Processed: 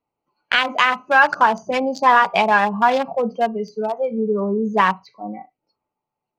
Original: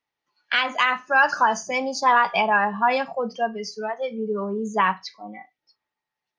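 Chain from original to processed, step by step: local Wiener filter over 25 samples; in parallel at -0.5 dB: compression, threshold -30 dBFS, peak gain reduction 16 dB; on the sum: trim +3.5 dB

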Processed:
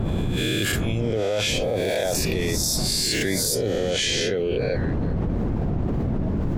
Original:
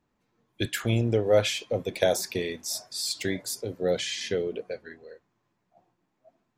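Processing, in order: reverse spectral sustain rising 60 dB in 0.82 s; wind noise 200 Hz -31 dBFS; level flattener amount 100%; trim -7 dB

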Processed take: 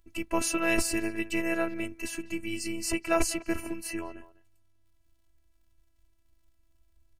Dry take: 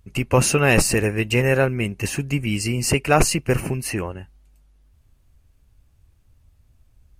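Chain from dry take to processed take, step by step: crackle 64 per s -53 dBFS; speakerphone echo 200 ms, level -16 dB; robot voice 332 Hz; trim -7 dB

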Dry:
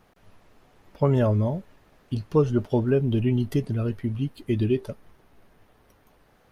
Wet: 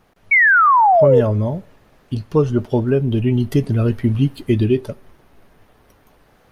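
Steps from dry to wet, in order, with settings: gain riding 0.5 s; painted sound fall, 0.31–1.21 s, 440–2300 Hz -18 dBFS; on a send: reverberation, pre-delay 3 ms, DRR 23 dB; on the sum: trim +6.5 dB

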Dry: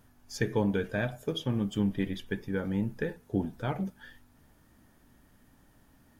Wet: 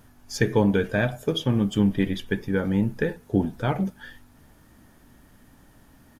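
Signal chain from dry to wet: resampled via 32 kHz; trim +7.5 dB

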